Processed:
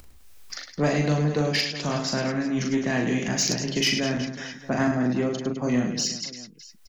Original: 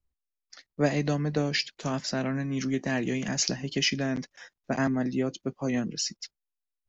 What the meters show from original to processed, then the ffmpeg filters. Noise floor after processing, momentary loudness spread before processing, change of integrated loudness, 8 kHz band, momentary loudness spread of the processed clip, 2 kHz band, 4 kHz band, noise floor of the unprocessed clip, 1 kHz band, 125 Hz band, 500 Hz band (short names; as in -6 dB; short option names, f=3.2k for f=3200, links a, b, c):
-49 dBFS, 7 LU, +4.0 dB, n/a, 11 LU, +4.0 dB, +4.5 dB, under -85 dBFS, +4.5 dB, +4.0 dB, +4.0 dB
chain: -af "acompressor=mode=upward:threshold=-30dB:ratio=2.5,aecho=1:1:40|104|206.4|370.2|632.4:0.631|0.398|0.251|0.158|0.1,asoftclip=type=tanh:threshold=-16.5dB,volume=3dB"